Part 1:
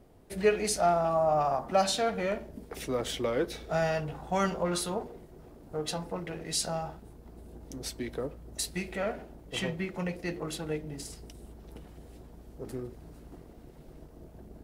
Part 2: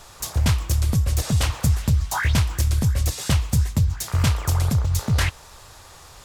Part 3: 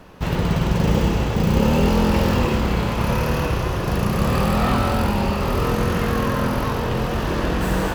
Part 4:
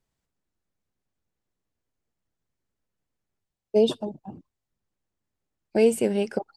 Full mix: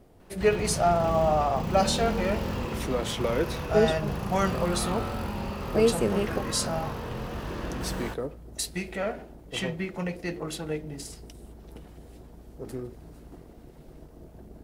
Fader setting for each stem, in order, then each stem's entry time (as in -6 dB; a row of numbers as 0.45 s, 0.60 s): +2.0 dB, mute, -12.5 dB, -3.0 dB; 0.00 s, mute, 0.20 s, 0.00 s